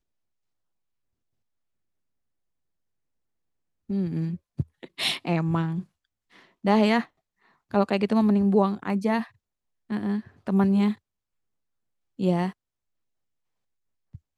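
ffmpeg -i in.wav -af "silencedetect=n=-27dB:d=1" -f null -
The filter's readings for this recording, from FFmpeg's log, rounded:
silence_start: 0.00
silence_end: 3.90 | silence_duration: 3.90
silence_start: 10.92
silence_end: 12.20 | silence_duration: 1.28
silence_start: 12.49
silence_end: 14.38 | silence_duration: 1.89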